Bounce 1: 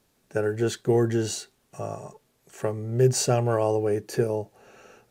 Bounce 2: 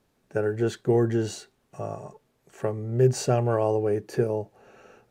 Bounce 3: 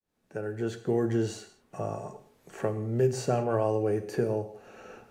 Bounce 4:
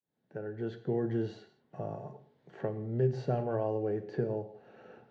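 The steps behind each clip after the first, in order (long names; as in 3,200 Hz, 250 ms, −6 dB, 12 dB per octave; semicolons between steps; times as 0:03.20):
high-shelf EQ 3,300 Hz −9 dB
fade in at the beginning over 1.22 s; reverb whose tail is shaped and stops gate 210 ms falling, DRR 8 dB; multiband upward and downward compressor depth 40%; level −3 dB
loudspeaker in its box 110–3,800 Hz, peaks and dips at 140 Hz +10 dB, 1,200 Hz −8 dB, 2,500 Hz −9 dB; level −5 dB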